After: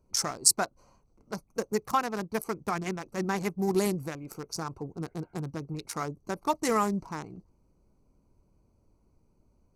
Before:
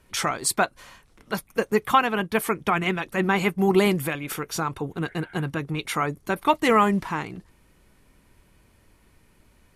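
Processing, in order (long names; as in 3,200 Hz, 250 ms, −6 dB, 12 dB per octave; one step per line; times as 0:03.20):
adaptive Wiener filter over 25 samples
high shelf with overshoot 4,200 Hz +9.5 dB, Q 3
level −7 dB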